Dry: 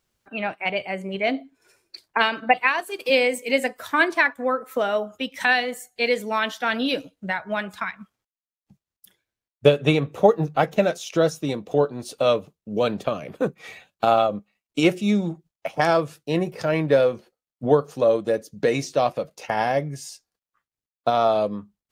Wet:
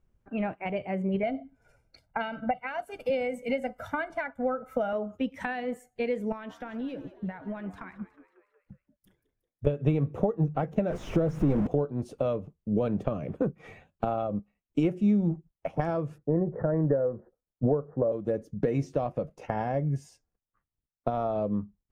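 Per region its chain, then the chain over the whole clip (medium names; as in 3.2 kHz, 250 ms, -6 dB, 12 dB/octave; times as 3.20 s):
1.23–4.93 s: band-stop 7.6 kHz, Q 19 + comb 1.4 ms, depth 89%
6.32–9.67 s: compression 5:1, threshold -33 dBFS + frequency-shifting echo 182 ms, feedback 57%, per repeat +78 Hz, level -16 dB
10.90–11.67 s: jump at every zero crossing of -22.5 dBFS + treble shelf 3.7 kHz -11.5 dB
16.18–18.12 s: steep low-pass 1.9 kHz 96 dB/octave + peaking EQ 520 Hz +4.5 dB 0.85 oct
whole clip: peaking EQ 4.1 kHz -7.5 dB 0.65 oct; compression 5:1, threshold -24 dBFS; tilt EQ -4 dB/octave; trim -5 dB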